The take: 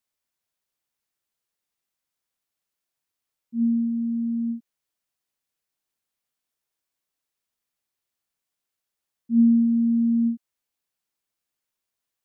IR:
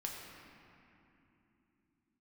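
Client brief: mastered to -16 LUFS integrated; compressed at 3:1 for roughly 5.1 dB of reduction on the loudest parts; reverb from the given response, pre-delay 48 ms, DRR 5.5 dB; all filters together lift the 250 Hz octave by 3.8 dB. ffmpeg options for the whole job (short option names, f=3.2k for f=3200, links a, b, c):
-filter_complex "[0:a]equalizer=f=250:t=o:g=4,acompressor=threshold=-17dB:ratio=3,asplit=2[a][b];[1:a]atrim=start_sample=2205,adelay=48[c];[b][c]afir=irnorm=-1:irlink=0,volume=-5.5dB[d];[a][d]amix=inputs=2:normalize=0,volume=3dB"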